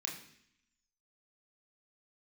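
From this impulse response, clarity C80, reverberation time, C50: 10.5 dB, 0.65 s, 7.5 dB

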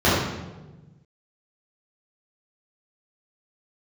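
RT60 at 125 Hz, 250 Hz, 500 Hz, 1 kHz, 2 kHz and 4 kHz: 2.0 s, 1.6 s, 1.3 s, 1.0 s, 0.85 s, 0.80 s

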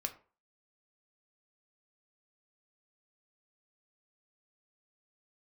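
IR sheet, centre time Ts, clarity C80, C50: 8 ms, 18.5 dB, 14.5 dB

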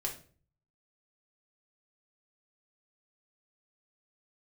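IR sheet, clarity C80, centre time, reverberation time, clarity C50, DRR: 15.0 dB, 17 ms, 0.45 s, 9.5 dB, -1.5 dB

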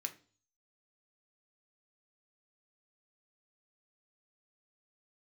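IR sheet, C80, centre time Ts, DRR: 21.0 dB, 7 ms, 5.5 dB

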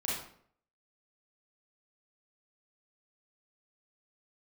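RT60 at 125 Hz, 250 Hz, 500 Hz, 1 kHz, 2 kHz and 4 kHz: 0.65 s, 0.65 s, 0.65 s, 0.55 s, 0.50 s, 0.45 s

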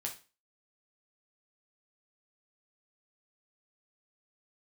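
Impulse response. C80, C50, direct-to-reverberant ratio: 17.0 dB, 10.5 dB, 0.0 dB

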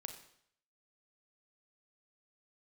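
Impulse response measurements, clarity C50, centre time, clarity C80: 8.5 dB, 17 ms, 11.0 dB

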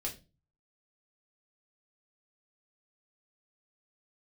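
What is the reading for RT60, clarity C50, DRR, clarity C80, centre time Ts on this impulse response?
0.30 s, 12.5 dB, -2.5 dB, 19.0 dB, 16 ms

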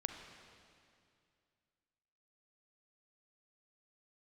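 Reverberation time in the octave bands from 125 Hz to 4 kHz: 2.7 s, 2.6 s, 2.4 s, 2.3 s, 2.3 s, 2.2 s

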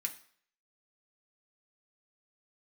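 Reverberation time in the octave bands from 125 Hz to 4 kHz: 0.45 s, 0.50 s, 0.55 s, 0.55 s, 0.55 s, 0.55 s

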